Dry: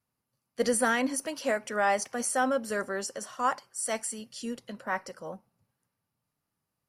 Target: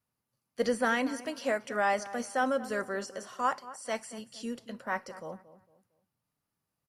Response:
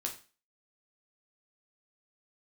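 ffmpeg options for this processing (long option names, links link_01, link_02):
-filter_complex "[0:a]asplit=2[link_01][link_02];[link_02]adelay=228,lowpass=frequency=1600:poles=1,volume=-15dB,asplit=2[link_03][link_04];[link_04]adelay=228,lowpass=frequency=1600:poles=1,volume=0.34,asplit=2[link_05][link_06];[link_06]adelay=228,lowpass=frequency=1600:poles=1,volume=0.34[link_07];[link_01][link_03][link_05][link_07]amix=inputs=4:normalize=0,asplit=2[link_08][link_09];[1:a]atrim=start_sample=2205[link_10];[link_09][link_10]afir=irnorm=-1:irlink=0,volume=-19dB[link_11];[link_08][link_11]amix=inputs=2:normalize=0,acrossover=split=5200[link_12][link_13];[link_13]acompressor=threshold=-47dB:ratio=4:attack=1:release=60[link_14];[link_12][link_14]amix=inputs=2:normalize=0,volume=-2.5dB"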